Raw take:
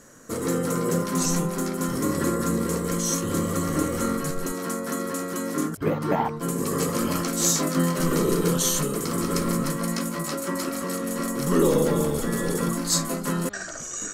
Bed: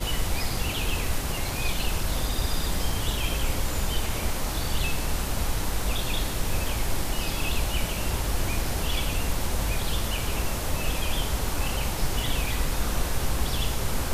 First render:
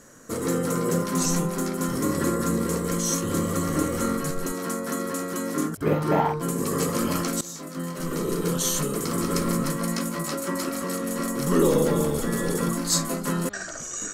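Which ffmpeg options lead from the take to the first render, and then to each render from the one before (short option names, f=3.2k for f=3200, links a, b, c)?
-filter_complex "[0:a]asettb=1/sr,asplit=3[a][b][c];[a]atrim=end=5.764[d];[b]atrim=start=5.76:end=6.42,asetpts=PTS-STARTPTS,afade=t=in:d=0.004:c=qsin,afade=t=out:st=0.656:d=0.004:c=qsin,asplit=2[e][f];[f]adelay=46,volume=-2.5dB[g];[e][g]amix=inputs=2:normalize=0,atrim=end_sample=29106[h];[c]atrim=start=6.416[i];[d][h]acrossfade=d=0.004:c1=hsin:c2=qsin[j];[j][i]acrossfade=d=0.004:c1=qsin:c2=hsin,asplit=2[k][l];[k]atrim=end=7.41,asetpts=PTS-STARTPTS,afade=t=out:st=7.406:d=0.004:c=hsin:silence=0.105925[m];[l]atrim=start=7.41,asetpts=PTS-STARTPTS,afade=t=in:d=1.6:silence=0.105925[n];[m][n]concat=n=2:v=0:a=1"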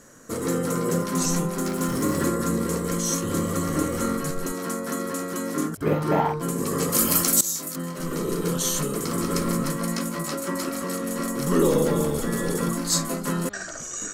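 -filter_complex "[0:a]asettb=1/sr,asplit=3[a][b][c];[a]atrim=end=1.654[d];[b]atrim=start=1.65:end=2.28,asetpts=PTS-STARTPTS,afade=t=in:d=0.004:c=qsin,afade=t=out:st=0.626:d=0.004:c=qsin,aeval=exprs='val(0)+0.5*0.0188*sgn(val(0))':c=same[e];[c]atrim=start=2.276[f];[d][e]acrossfade=d=0.004:c1=hsin:c2=qsin[g];[g][f]acrossfade=d=0.004:c1=qsin:c2=hsin,asettb=1/sr,asplit=3[h][i][j];[h]atrim=end=6.924[k];[i]atrim=start=6.92:end=7.76,asetpts=PTS-STARTPTS,afade=t=in:d=0.004:c=qsin,afade=t=out:st=0.836:d=0.004:c=qsin,aemphasis=mode=production:type=75fm[l];[j]atrim=start=7.756[m];[k][l]acrossfade=d=0.004:c1=hsin:c2=qsin[n];[n][m]acrossfade=d=0.004:c1=qsin:c2=hsin"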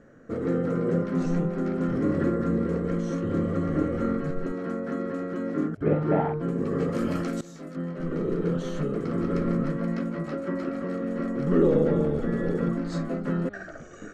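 -af "lowpass=1.5k,equalizer=f=1k:t=o:w=0.4:g=-13"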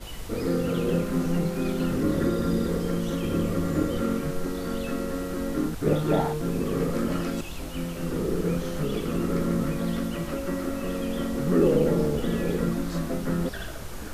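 -filter_complex "[1:a]volume=-11dB[a];[0:a][a]amix=inputs=2:normalize=0"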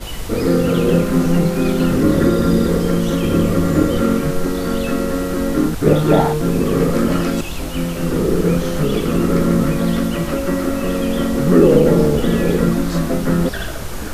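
-af "volume=10.5dB,alimiter=limit=-1dB:level=0:latency=1"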